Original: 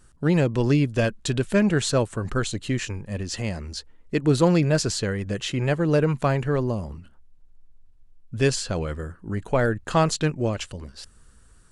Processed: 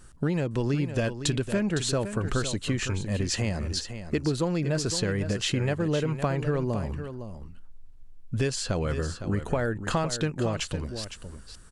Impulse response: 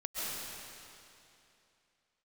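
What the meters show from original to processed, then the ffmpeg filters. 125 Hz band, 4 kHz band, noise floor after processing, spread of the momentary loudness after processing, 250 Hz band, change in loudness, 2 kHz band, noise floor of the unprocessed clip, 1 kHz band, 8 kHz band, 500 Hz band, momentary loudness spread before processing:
-3.5 dB, -0.5 dB, -47 dBFS, 9 LU, -4.5 dB, -4.5 dB, -4.0 dB, -54 dBFS, -5.5 dB, -1.0 dB, -5.0 dB, 12 LU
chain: -af "acompressor=threshold=-28dB:ratio=6,aecho=1:1:510:0.316,volume=4dB"

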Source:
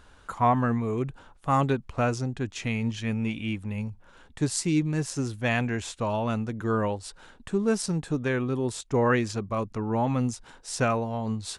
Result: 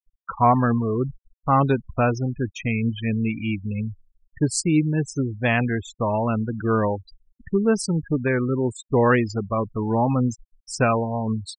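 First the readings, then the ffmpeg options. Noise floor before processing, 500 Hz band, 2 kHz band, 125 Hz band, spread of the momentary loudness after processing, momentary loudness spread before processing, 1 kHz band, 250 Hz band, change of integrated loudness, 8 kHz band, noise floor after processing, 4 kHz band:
-54 dBFS, +5.0 dB, +4.5 dB, +5.0 dB, 8 LU, 8 LU, +5.0 dB, +5.0 dB, +5.0 dB, +2.0 dB, under -85 dBFS, +0.5 dB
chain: -af "agate=range=-33dB:threshold=-51dB:ratio=3:detection=peak,afftfilt=real='re*gte(hypot(re,im),0.0316)':imag='im*gte(hypot(re,im),0.0316)':win_size=1024:overlap=0.75,volume=5dB"

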